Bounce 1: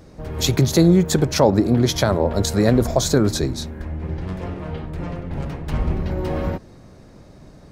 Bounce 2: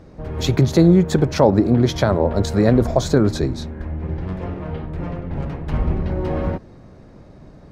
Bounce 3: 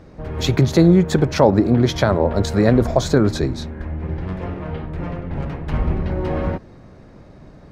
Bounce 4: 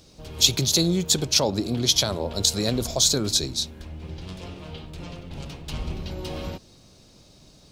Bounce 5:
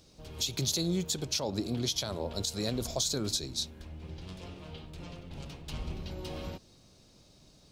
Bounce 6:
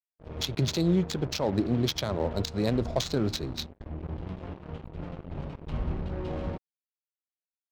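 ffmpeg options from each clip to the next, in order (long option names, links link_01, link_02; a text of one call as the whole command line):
ffmpeg -i in.wav -af "lowpass=frequency=2200:poles=1,volume=1.5dB" out.wav
ffmpeg -i in.wav -af "equalizer=frequency=2000:width=0.66:gain=3" out.wav
ffmpeg -i in.wav -af "aexciter=amount=13.7:drive=2.9:freq=2800,volume=-11dB" out.wav
ffmpeg -i in.wav -af "alimiter=limit=-12dB:level=0:latency=1:release=192,volume=-7dB" out.wav
ffmpeg -i in.wav -af "acrusher=bits=6:mix=0:aa=0.5,adynamicsmooth=sensitivity=3:basefreq=1100,agate=range=-33dB:threshold=-43dB:ratio=3:detection=peak,volume=7dB" out.wav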